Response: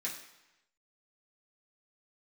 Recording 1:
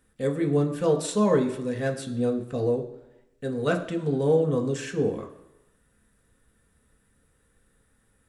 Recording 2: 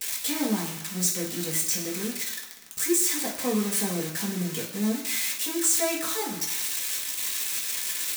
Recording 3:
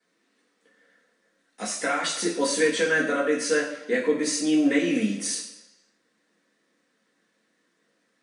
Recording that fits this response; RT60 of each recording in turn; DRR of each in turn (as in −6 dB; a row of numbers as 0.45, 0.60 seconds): 2; 0.95, 0.95, 0.95 seconds; 3.0, −7.0, −14.0 decibels